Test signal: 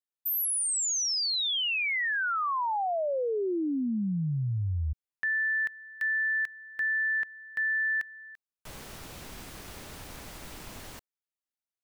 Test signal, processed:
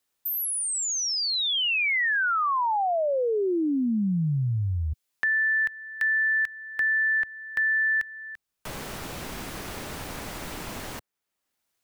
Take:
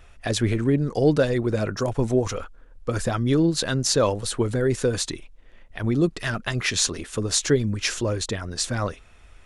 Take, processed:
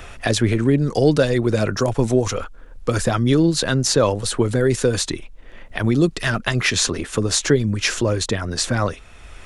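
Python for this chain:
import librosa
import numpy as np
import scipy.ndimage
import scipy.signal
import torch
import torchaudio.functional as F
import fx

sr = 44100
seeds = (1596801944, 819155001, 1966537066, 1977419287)

y = fx.band_squash(x, sr, depth_pct=40)
y = y * librosa.db_to_amplitude(4.5)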